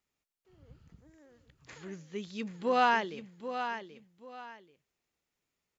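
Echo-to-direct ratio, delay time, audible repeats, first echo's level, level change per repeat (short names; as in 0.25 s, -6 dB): -9.0 dB, 0.783 s, 2, -9.5 dB, -11.5 dB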